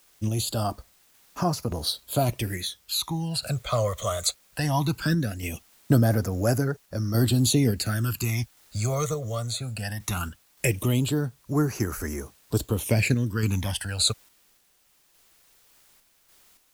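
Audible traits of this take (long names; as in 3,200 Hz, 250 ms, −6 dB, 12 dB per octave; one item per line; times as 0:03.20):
phaser sweep stages 12, 0.19 Hz, lowest notch 270–3,300 Hz
a quantiser's noise floor 10 bits, dither triangular
sample-and-hold tremolo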